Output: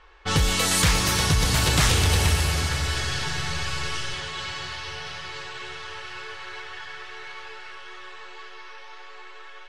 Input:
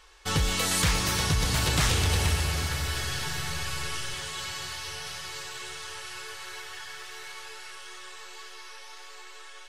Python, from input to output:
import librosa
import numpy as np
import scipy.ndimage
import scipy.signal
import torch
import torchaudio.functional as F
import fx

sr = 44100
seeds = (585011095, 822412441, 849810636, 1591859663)

y = fx.env_lowpass(x, sr, base_hz=2200.0, full_db=-22.5)
y = y * librosa.db_to_amplitude(4.5)